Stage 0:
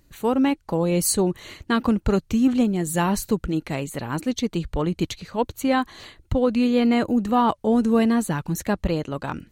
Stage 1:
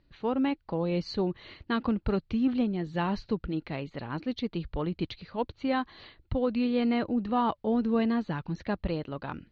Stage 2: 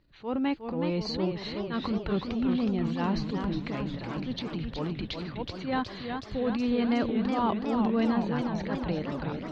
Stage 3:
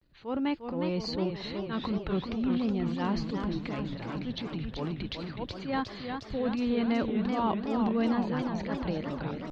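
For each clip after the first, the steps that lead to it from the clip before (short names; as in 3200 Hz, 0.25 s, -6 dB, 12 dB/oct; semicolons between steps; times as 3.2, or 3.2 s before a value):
steep low-pass 4800 Hz 48 dB/oct; gain -7.5 dB
transient shaper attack -10 dB, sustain +6 dB; warbling echo 0.367 s, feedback 68%, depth 161 cents, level -6 dB
vibrato 0.38 Hz 59 cents; gain -1.5 dB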